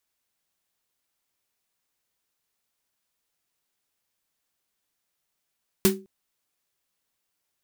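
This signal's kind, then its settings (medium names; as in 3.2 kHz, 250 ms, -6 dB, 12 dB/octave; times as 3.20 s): snare drum length 0.21 s, tones 200 Hz, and 380 Hz, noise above 750 Hz, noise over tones -2 dB, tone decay 0.32 s, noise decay 0.17 s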